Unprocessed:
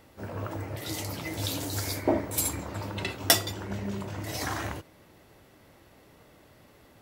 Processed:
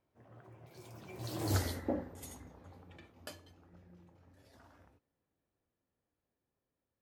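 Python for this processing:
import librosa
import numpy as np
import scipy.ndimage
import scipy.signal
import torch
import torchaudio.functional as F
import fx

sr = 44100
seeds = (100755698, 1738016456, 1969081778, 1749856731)

y = fx.doppler_pass(x, sr, speed_mps=46, closest_m=3.6, pass_at_s=1.53)
y = fx.high_shelf(y, sr, hz=2100.0, db=-8.5)
y = y * librosa.db_to_amplitude(3.0)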